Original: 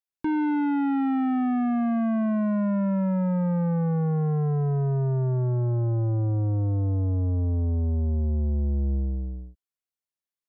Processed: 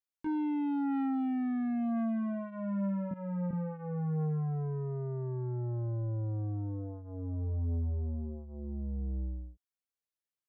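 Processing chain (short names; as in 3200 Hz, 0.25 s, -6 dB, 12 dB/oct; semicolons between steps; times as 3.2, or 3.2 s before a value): 3.11–3.51 HPF 150 Hz 24 dB/oct; limiter -28 dBFS, peak gain reduction 7 dB; chorus 0.22 Hz, delay 19 ms, depth 7.5 ms; gain -2 dB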